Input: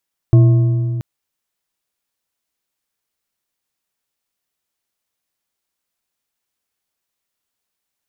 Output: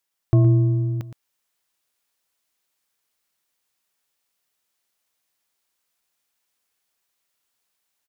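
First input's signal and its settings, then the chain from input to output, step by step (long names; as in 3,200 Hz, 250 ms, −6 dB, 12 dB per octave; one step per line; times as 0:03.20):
struck metal bar, length 0.68 s, lowest mode 121 Hz, modes 4, decay 2.67 s, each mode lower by 11 dB, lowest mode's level −4.5 dB
single-tap delay 117 ms −11.5 dB
automatic gain control gain up to 3.5 dB
low-shelf EQ 390 Hz −6.5 dB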